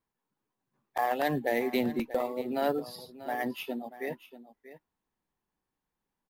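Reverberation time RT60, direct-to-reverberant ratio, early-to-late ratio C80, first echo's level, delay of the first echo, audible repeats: none, none, none, -15.0 dB, 0.638 s, 1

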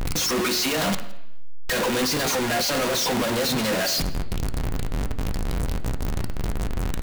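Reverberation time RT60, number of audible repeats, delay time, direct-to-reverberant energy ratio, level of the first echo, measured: 0.80 s, 1, 0.167 s, 7.0 dB, -22.0 dB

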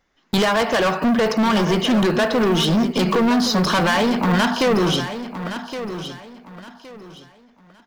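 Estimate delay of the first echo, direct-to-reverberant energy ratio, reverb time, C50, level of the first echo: 1.117 s, none, none, none, -11.0 dB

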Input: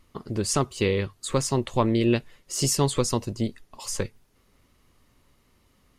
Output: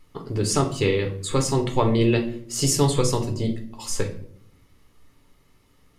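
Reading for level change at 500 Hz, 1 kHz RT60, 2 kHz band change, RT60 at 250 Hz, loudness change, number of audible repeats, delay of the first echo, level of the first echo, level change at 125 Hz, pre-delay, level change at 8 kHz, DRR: +3.0 dB, 0.55 s, +2.5 dB, 1.0 s, +2.5 dB, none, none, none, +4.0 dB, 7 ms, +1.5 dB, 3.5 dB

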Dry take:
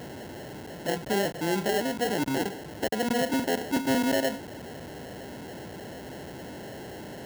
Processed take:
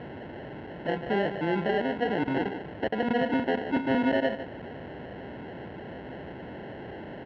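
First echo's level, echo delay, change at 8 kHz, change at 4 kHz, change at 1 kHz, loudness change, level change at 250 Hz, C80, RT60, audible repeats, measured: -11.0 dB, 0.15 s, under -30 dB, -6.5 dB, +0.5 dB, -0.5 dB, +0.5 dB, none, none, 1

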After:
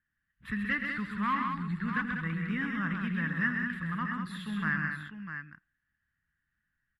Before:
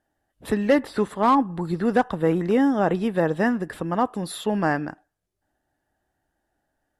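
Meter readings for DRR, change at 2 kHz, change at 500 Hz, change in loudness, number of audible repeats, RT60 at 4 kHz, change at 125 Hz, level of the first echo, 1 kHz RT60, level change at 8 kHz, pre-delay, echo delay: none, +0.5 dB, -29.5 dB, -9.5 dB, 5, none, -5.5 dB, -15.0 dB, none, under -15 dB, none, 84 ms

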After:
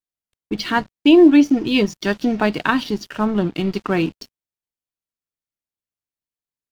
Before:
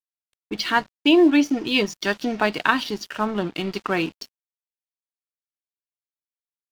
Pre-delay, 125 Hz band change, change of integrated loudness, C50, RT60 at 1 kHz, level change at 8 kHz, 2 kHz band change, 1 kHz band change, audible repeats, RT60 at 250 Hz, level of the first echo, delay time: none, +8.0 dB, +4.0 dB, none, none, n/a, -0.5 dB, +0.5 dB, none, none, none, none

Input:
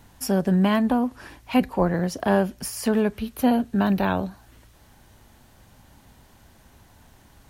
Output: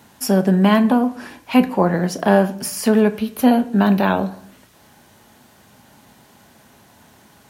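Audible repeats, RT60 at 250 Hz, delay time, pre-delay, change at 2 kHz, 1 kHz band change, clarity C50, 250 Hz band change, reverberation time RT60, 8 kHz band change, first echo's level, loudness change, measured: none, 0.75 s, none, 5 ms, +6.0 dB, +6.0 dB, 16.0 dB, +6.0 dB, 0.65 s, +6.0 dB, none, +6.0 dB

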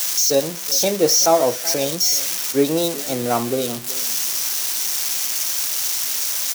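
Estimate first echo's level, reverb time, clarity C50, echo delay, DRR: -19.0 dB, none, none, 0.378 s, none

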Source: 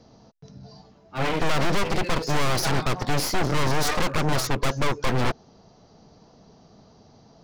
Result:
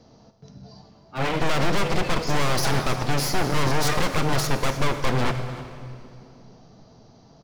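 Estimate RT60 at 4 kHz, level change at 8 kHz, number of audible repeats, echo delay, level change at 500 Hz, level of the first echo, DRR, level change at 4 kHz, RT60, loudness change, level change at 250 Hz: 2.0 s, +0.5 dB, 1, 0.302 s, +1.0 dB, -17.5 dB, 7.5 dB, +0.5 dB, 2.6 s, +0.5 dB, +1.0 dB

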